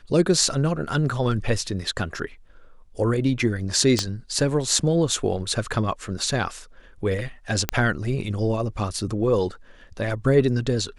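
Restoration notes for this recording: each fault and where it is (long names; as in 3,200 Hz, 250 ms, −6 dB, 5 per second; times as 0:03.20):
0:03.99: click −8 dBFS
0:07.69: click −4 dBFS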